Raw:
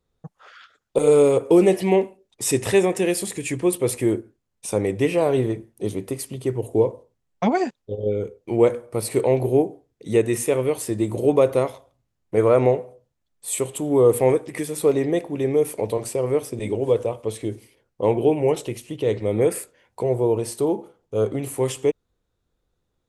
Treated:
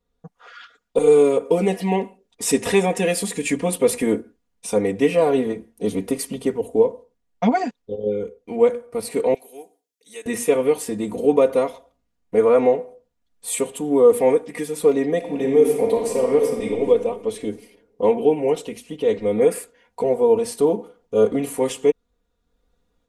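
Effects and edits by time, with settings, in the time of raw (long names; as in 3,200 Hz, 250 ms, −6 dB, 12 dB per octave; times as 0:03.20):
0:09.34–0:10.26: first difference
0:15.17–0:16.78: thrown reverb, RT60 1.7 s, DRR 1.5 dB
whole clip: high-shelf EQ 6,700 Hz −4.5 dB; comb filter 4.2 ms, depth 98%; automatic gain control gain up to 7 dB; level −3.5 dB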